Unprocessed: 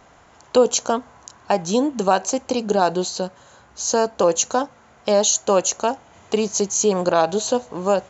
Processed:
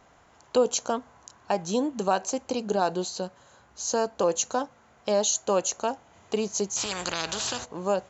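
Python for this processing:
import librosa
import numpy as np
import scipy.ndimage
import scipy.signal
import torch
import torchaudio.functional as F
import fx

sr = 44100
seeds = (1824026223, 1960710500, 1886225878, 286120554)

y = fx.spectral_comp(x, sr, ratio=4.0, at=(6.76, 7.64), fade=0.02)
y = F.gain(torch.from_numpy(y), -7.0).numpy()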